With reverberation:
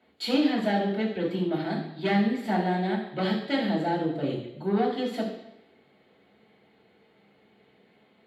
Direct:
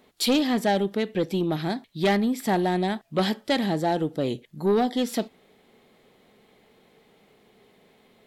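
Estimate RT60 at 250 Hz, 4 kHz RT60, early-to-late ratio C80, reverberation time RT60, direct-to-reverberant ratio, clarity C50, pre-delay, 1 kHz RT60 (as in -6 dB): 0.85 s, 0.90 s, 8.0 dB, 0.85 s, -5.5 dB, 5.5 dB, 3 ms, 0.85 s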